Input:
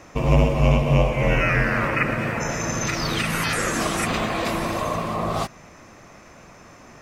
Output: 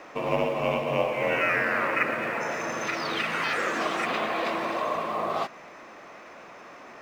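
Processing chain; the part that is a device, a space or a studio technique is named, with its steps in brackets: phone line with mismatched companding (BPF 360–3400 Hz; G.711 law mismatch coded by mu); gain -2.5 dB

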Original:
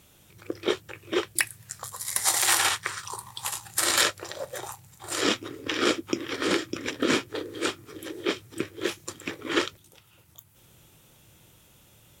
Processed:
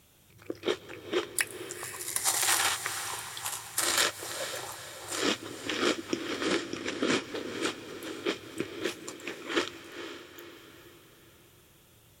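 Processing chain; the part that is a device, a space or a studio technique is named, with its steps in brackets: 6.44–7.23 steep low-pass 11000 Hz; 8.98–9.56 tone controls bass -12 dB, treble -1 dB; saturated reverb return (on a send at -11.5 dB: reverb RT60 2.9 s, pre-delay 0.117 s + soft clip -31.5 dBFS, distortion -7 dB); on the sum: diffused feedback echo 0.474 s, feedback 46%, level -11 dB; gain -4 dB

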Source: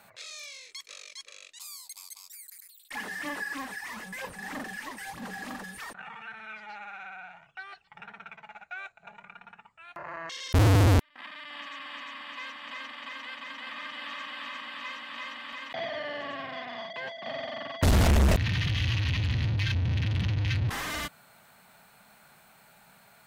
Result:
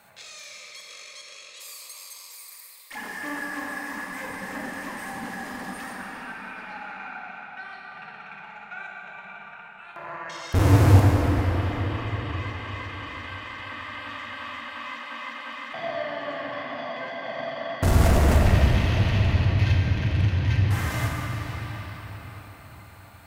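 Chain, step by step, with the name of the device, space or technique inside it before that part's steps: cathedral (reverb RT60 5.7 s, pre-delay 11 ms, DRR -4 dB); dynamic EQ 3700 Hz, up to -6 dB, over -43 dBFS, Q 1

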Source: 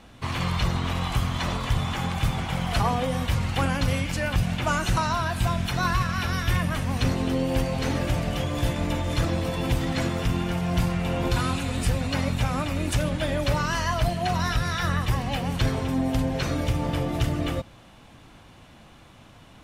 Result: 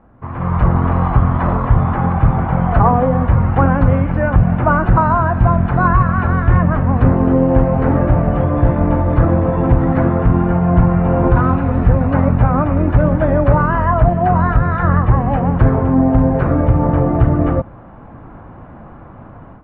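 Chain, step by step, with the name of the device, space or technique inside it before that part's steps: action camera in a waterproof case (LPF 1400 Hz 24 dB/oct; AGC gain up to 13.5 dB; gain +1 dB; AAC 96 kbps 48000 Hz)

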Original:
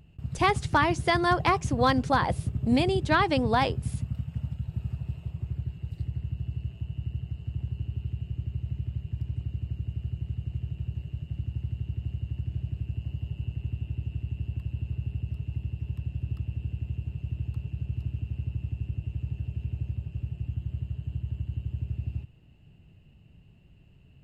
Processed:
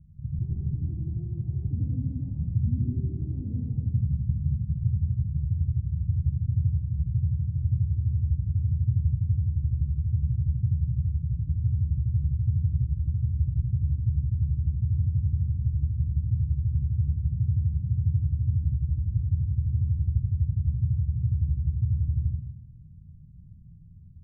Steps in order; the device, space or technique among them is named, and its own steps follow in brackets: club heard from the street (limiter -23.5 dBFS, peak gain reduction 11.5 dB; LPF 190 Hz 24 dB/oct; reverb RT60 1.1 s, pre-delay 83 ms, DRR -3.5 dB); gain +2 dB

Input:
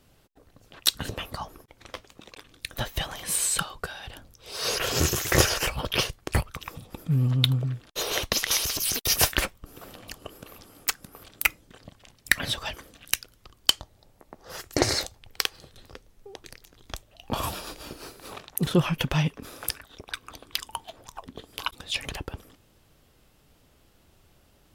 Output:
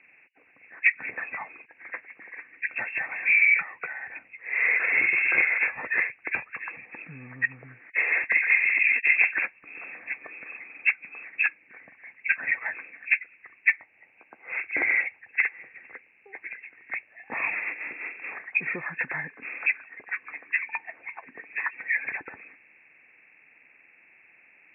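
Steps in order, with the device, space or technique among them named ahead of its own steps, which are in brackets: hearing aid with frequency lowering (nonlinear frequency compression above 1500 Hz 4:1; compressor 2.5:1, threshold -27 dBFS, peak gain reduction 10.5 dB; speaker cabinet 400–5100 Hz, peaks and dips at 400 Hz -5 dB, 590 Hz -7 dB, 1100 Hz -3 dB, 2200 Hz +9 dB, 4400 Hz +8 dB)

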